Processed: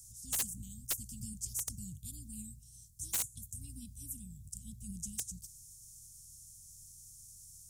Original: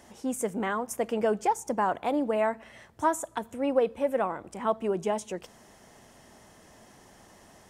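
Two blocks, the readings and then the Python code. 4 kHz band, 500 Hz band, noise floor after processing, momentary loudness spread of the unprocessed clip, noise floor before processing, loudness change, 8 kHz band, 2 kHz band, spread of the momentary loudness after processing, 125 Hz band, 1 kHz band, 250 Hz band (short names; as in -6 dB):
-1.5 dB, -38.0 dB, -57 dBFS, 7 LU, -56 dBFS, -10.5 dB, +3.5 dB, -17.5 dB, 17 LU, -1.5 dB, -32.0 dB, -17.5 dB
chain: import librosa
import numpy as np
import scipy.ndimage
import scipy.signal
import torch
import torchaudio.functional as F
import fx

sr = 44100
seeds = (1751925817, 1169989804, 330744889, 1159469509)

y = fx.spec_clip(x, sr, under_db=16)
y = scipy.signal.sosfilt(scipy.signal.cheby2(4, 70, [450.0, 2000.0], 'bandstop', fs=sr, output='sos'), y)
y = (np.mod(10.0 ** (30.5 / 20.0) * y + 1.0, 2.0) - 1.0) / 10.0 ** (30.5 / 20.0)
y = F.gain(torch.from_numpy(y), 5.5).numpy()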